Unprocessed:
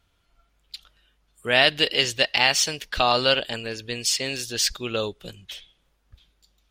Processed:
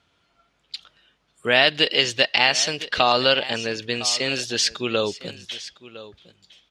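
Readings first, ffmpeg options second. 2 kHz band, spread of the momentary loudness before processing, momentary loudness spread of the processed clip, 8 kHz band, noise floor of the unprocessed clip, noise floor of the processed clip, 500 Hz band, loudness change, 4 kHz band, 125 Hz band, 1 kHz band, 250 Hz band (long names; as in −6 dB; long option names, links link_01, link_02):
+2.0 dB, 19 LU, 18 LU, −0.5 dB, −68 dBFS, −68 dBFS, +2.5 dB, +2.0 dB, +2.0 dB, +0.5 dB, +2.0 dB, +3.5 dB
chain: -af "aecho=1:1:1008:0.119,acompressor=threshold=-25dB:ratio=1.5,highpass=130,lowpass=6200,volume=5.5dB"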